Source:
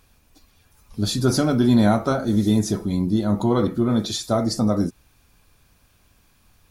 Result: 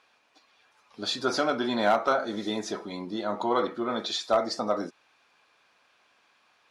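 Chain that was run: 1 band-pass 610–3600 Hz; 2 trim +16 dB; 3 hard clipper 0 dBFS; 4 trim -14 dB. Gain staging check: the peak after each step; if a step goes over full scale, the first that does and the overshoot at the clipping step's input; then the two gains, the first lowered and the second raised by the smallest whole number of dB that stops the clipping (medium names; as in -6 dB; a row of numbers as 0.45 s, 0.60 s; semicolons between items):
-12.0 dBFS, +4.0 dBFS, 0.0 dBFS, -14.0 dBFS; step 2, 4.0 dB; step 2 +12 dB, step 4 -10 dB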